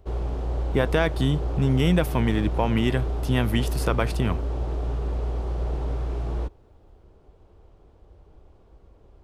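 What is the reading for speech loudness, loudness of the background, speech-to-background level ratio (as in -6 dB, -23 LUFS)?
-25.0 LUFS, -29.5 LUFS, 4.5 dB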